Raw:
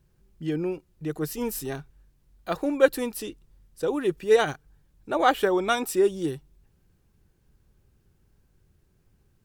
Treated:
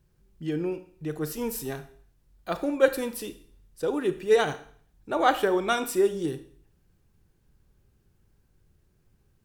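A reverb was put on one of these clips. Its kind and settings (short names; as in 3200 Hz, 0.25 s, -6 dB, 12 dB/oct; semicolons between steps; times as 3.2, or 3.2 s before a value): Schroeder reverb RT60 0.53 s, combs from 27 ms, DRR 10.5 dB; gain -1.5 dB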